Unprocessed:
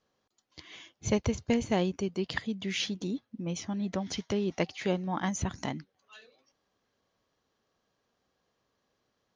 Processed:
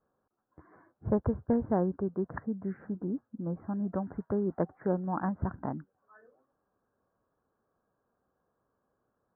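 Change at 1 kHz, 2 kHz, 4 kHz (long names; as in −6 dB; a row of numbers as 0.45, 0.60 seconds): 0.0 dB, −11.0 dB, below −40 dB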